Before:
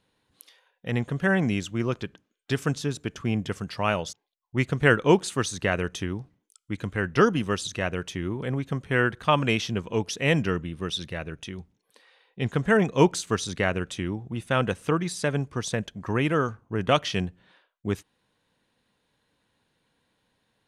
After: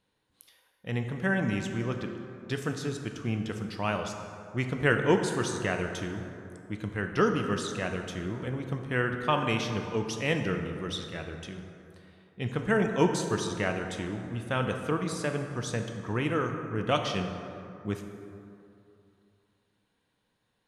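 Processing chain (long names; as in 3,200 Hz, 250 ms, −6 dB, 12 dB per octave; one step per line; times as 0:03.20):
dense smooth reverb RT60 2.7 s, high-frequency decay 0.45×, DRR 4.5 dB
level −5.5 dB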